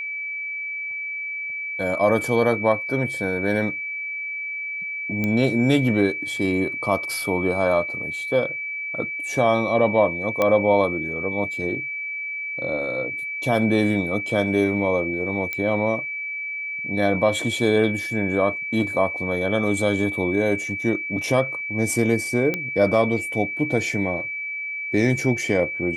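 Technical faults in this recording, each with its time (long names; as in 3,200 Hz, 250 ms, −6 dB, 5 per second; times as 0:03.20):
whistle 2,300 Hz −27 dBFS
0:05.24: click −12 dBFS
0:10.42: click −8 dBFS
0:15.53: click −13 dBFS
0:22.54: click −11 dBFS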